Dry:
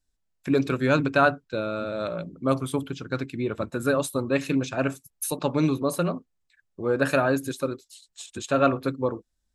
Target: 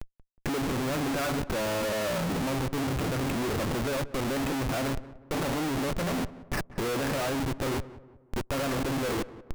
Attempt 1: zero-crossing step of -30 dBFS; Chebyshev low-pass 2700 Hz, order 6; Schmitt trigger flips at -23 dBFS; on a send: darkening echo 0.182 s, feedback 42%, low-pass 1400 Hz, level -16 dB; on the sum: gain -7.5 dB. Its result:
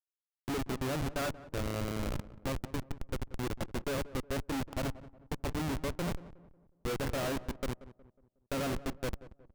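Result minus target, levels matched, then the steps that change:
zero-crossing step: distortion -8 dB
change: zero-crossing step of -18.5 dBFS

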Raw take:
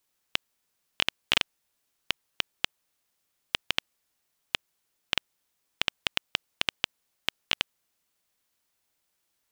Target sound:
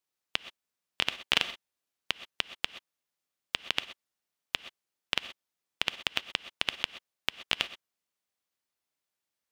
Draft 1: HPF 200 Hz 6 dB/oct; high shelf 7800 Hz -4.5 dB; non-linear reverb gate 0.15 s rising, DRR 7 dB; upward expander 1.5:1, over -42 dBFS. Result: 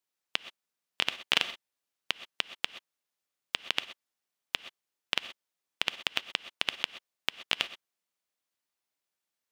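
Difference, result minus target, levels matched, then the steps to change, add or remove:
125 Hz band -3.5 dB
change: HPF 92 Hz 6 dB/oct

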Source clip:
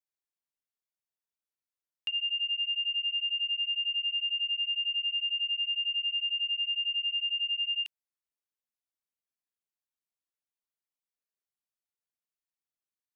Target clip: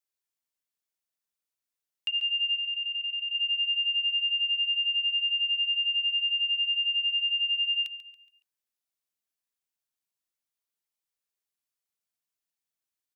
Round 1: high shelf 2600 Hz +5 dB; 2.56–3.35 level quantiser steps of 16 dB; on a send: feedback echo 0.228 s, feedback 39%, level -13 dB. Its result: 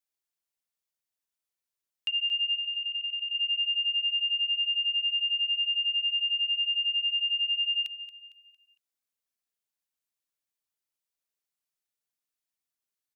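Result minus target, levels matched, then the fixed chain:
echo 88 ms late
high shelf 2600 Hz +5 dB; 2.56–3.35 level quantiser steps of 16 dB; on a send: feedback echo 0.14 s, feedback 39%, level -13 dB

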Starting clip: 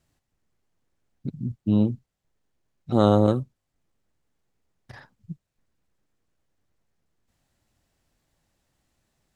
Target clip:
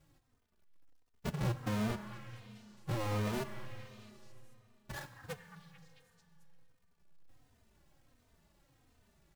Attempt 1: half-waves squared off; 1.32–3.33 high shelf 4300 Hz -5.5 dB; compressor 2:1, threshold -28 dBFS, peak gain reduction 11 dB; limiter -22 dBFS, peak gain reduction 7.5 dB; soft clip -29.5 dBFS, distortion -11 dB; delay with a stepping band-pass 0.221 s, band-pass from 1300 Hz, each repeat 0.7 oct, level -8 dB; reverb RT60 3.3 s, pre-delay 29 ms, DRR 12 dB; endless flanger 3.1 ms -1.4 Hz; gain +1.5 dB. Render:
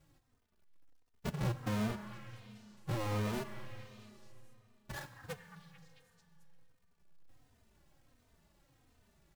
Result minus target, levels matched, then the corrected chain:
compressor: peak gain reduction +11 dB
half-waves squared off; 1.32–3.33 high shelf 4300 Hz -5.5 dB; limiter -22 dBFS, peak gain reduction 18 dB; soft clip -29.5 dBFS, distortion -11 dB; delay with a stepping band-pass 0.221 s, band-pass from 1300 Hz, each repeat 0.7 oct, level -8 dB; reverb RT60 3.3 s, pre-delay 29 ms, DRR 12 dB; endless flanger 3.1 ms -1.4 Hz; gain +1.5 dB

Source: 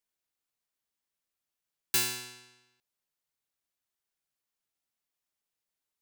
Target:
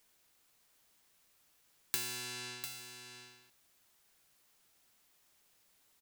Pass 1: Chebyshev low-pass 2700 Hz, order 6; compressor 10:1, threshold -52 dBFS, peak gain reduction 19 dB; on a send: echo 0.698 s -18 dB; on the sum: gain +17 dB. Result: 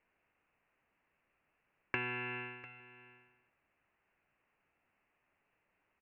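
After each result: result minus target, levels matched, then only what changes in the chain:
echo-to-direct -9.5 dB; 2000 Hz band +6.0 dB
change: echo 0.698 s -8.5 dB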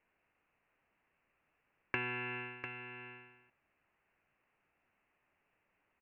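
2000 Hz band +7.5 dB
remove: Chebyshev low-pass 2700 Hz, order 6

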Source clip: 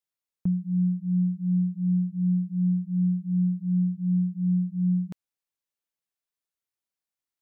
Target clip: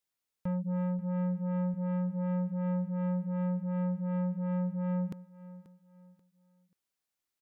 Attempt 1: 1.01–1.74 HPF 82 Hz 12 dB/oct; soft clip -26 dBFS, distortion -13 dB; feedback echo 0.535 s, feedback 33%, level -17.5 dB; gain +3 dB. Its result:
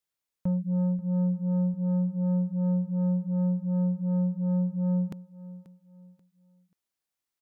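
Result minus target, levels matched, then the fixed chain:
soft clip: distortion -5 dB
1.01–1.74 HPF 82 Hz 12 dB/oct; soft clip -33 dBFS, distortion -8 dB; feedback echo 0.535 s, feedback 33%, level -17.5 dB; gain +3 dB

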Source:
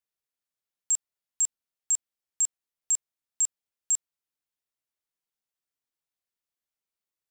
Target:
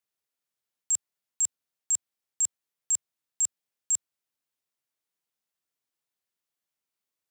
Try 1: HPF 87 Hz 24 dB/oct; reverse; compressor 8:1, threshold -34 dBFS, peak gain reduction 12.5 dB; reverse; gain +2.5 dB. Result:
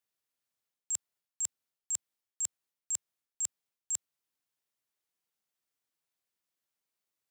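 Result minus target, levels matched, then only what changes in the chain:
compressor: peak gain reduction +8.5 dB
change: compressor 8:1, threshold -24.5 dBFS, peak gain reduction 4 dB

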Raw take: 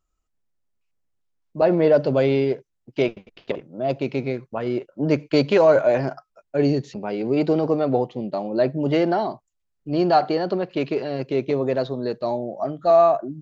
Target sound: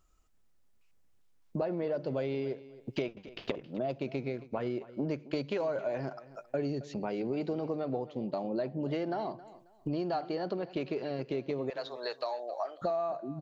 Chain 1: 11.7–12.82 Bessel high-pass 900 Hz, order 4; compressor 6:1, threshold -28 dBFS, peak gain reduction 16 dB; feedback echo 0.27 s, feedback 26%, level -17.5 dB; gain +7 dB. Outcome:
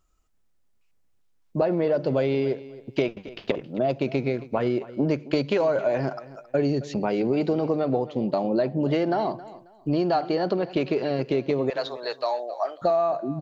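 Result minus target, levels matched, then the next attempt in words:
compressor: peak gain reduction -10 dB
11.7–12.82 Bessel high-pass 900 Hz, order 4; compressor 6:1, threshold -40 dBFS, peak gain reduction 26 dB; feedback echo 0.27 s, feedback 26%, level -17.5 dB; gain +7 dB

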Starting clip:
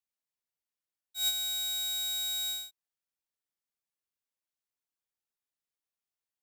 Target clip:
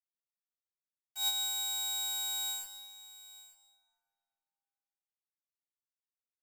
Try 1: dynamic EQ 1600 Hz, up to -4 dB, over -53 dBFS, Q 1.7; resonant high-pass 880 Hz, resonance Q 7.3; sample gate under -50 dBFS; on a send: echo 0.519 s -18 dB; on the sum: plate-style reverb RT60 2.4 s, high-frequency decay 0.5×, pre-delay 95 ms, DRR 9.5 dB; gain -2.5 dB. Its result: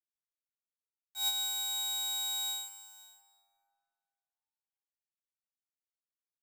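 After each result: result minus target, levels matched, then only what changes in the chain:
echo 0.369 s early; sample gate: distortion -12 dB
change: echo 0.888 s -18 dB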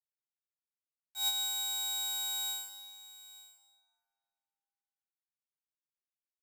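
sample gate: distortion -12 dB
change: sample gate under -41.5 dBFS

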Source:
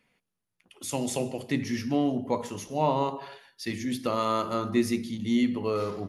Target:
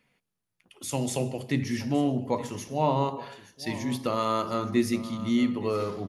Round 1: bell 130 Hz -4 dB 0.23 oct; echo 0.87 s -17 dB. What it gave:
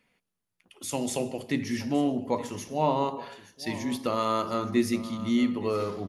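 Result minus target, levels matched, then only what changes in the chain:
125 Hz band -4.5 dB
change: bell 130 Hz +7 dB 0.23 oct

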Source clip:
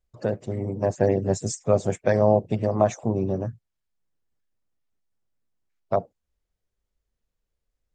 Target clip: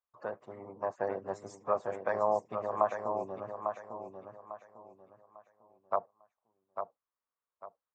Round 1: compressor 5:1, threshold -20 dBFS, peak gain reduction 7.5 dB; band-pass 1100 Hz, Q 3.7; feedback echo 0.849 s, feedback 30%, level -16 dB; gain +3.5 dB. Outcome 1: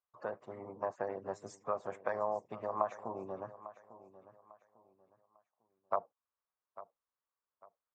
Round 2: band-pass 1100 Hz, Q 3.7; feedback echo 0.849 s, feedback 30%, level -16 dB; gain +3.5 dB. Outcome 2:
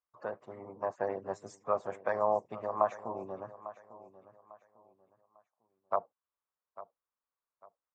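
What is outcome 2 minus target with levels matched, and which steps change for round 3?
echo-to-direct -9.5 dB
change: feedback echo 0.849 s, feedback 30%, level -6.5 dB

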